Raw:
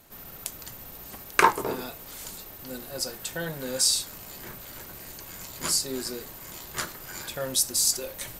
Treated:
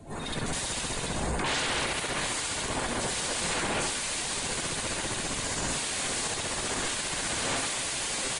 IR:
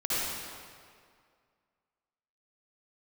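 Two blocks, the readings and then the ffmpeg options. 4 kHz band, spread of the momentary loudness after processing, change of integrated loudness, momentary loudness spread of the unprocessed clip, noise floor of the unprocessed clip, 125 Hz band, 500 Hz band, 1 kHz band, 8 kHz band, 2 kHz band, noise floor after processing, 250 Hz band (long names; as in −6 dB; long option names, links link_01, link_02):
+1.0 dB, 3 LU, −2.0 dB, 18 LU, −45 dBFS, +5.5 dB, 0.0 dB, −3.0 dB, −1.0 dB, +2.0 dB, −34 dBFS, +2.5 dB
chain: -filter_complex "[0:a]asplit=2[link_01][link_02];[link_02]adelay=19,volume=-14dB[link_03];[link_01][link_03]amix=inputs=2:normalize=0,asplit=2[link_04][link_05];[link_05]adelay=699.7,volume=-17dB,highshelf=frequency=4000:gain=-15.7[link_06];[link_04][link_06]amix=inputs=2:normalize=0,acrossover=split=130|6600[link_07][link_08][link_09];[link_09]acontrast=78[link_10];[link_07][link_08][link_10]amix=inputs=3:normalize=0,highshelf=frequency=2200:gain=-7,areverse,acompressor=threshold=-40dB:ratio=5,areverse[link_11];[1:a]atrim=start_sample=2205,asetrate=34839,aresample=44100[link_12];[link_11][link_12]afir=irnorm=-1:irlink=0,aeval=exprs='0.133*sin(PI/2*8.91*val(0)/0.133)':channel_layout=same,aresample=22050,aresample=44100,afftdn=noise_reduction=15:noise_floor=-33,equalizer=frequency=5500:width_type=o:width=0.34:gain=-4.5,bandreject=frequency=1300:width=16,volume=-6.5dB"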